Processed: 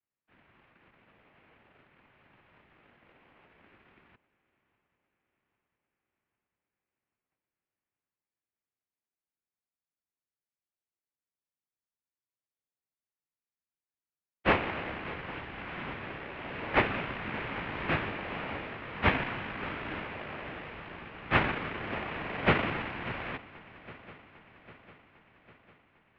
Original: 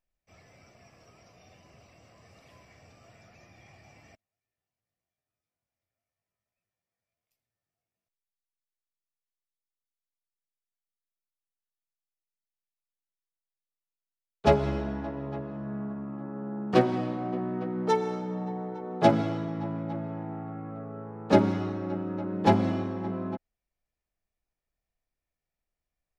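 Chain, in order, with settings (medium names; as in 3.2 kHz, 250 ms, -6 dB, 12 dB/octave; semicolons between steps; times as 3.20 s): noise-vocoded speech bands 1; in parallel at -7 dB: decimation with a swept rate 41×, swing 100% 0.53 Hz; on the sum: shuffle delay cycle 801 ms, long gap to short 3:1, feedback 55%, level -19 dB; mistuned SSB -120 Hz 180–2700 Hz; trim -2 dB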